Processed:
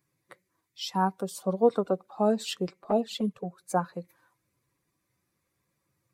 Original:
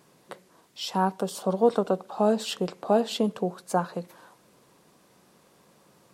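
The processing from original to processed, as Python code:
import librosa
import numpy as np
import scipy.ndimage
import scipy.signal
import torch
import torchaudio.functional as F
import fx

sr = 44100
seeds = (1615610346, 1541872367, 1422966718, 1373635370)

y = fx.bin_expand(x, sr, power=1.5)
y = fx.env_flanger(y, sr, rest_ms=5.4, full_db=-19.0, at=(2.71, 3.61))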